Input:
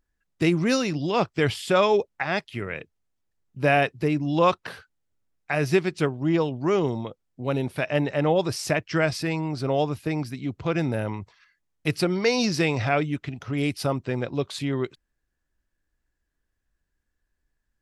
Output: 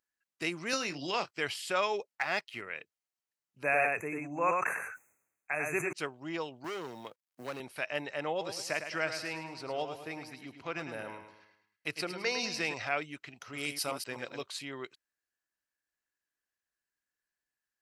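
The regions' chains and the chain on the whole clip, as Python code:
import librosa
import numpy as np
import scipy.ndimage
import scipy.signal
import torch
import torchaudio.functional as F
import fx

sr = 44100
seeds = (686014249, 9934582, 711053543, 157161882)

y = fx.chain(x, sr, fx.doubler(ms=22.0, db=-10),
    fx.band_squash(depth_pct=100), at=(0.73, 1.31))
y = fx.chain(y, sr, fx.high_shelf(hz=9600.0, db=-10.5),
    fx.leveller(passes=1),
    fx.notch(hz=1600.0, q=20.0), at=(2.15, 2.61))
y = fx.chain(y, sr, fx.brickwall_bandstop(low_hz=2700.0, high_hz=6000.0),
    fx.echo_single(ms=97, db=-3.5),
    fx.sustainer(db_per_s=50.0), at=(3.63, 5.93))
y = fx.chain(y, sr, fx.law_mismatch(coded='A'),
    fx.clip_hard(threshold_db=-21.5),
    fx.band_squash(depth_pct=70), at=(6.64, 7.6))
y = fx.chain(y, sr, fx.high_shelf(hz=6000.0, db=-6.5),
    fx.echo_feedback(ms=106, feedback_pct=43, wet_db=-8.5), at=(8.3, 12.74))
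y = fx.chain(y, sr, fx.reverse_delay(ms=126, wet_db=-6.0),
    fx.high_shelf(hz=5800.0, db=9.0), at=(13.41, 14.43))
y = fx.highpass(y, sr, hz=1300.0, slope=6)
y = fx.notch(y, sr, hz=3500.0, q=11.0)
y = y * 10.0 ** (-4.0 / 20.0)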